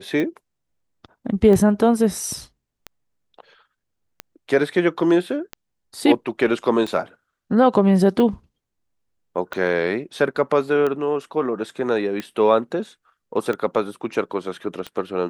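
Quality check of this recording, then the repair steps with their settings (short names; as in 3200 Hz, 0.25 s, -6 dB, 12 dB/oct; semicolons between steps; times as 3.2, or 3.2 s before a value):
tick 45 rpm -14 dBFS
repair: de-click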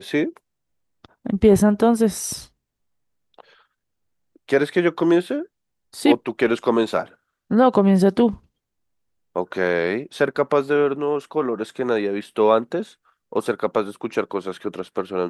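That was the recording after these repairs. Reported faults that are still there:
none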